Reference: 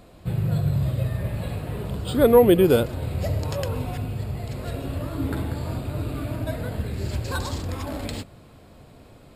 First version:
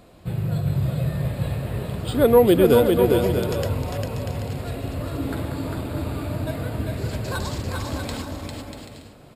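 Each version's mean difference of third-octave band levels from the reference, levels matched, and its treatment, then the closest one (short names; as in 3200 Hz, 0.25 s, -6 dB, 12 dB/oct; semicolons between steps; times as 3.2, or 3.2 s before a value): 3.5 dB: low shelf 65 Hz -5.5 dB; on a send: bouncing-ball echo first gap 0.4 s, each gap 0.6×, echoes 5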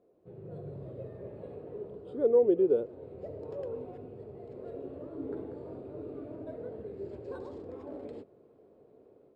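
11.5 dB: AGC gain up to 7.5 dB; band-pass 420 Hz, Q 4.1; gain -7.5 dB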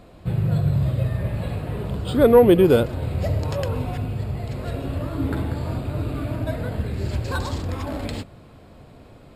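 1.5 dB: in parallel at -10 dB: hard clip -13 dBFS, distortion -14 dB; on the sum: high shelf 5100 Hz -8 dB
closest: third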